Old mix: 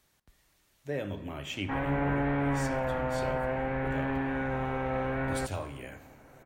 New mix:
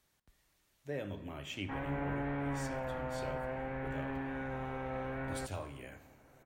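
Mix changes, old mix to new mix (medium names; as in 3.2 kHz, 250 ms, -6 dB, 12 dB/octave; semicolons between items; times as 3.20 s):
speech -5.5 dB; background -8.0 dB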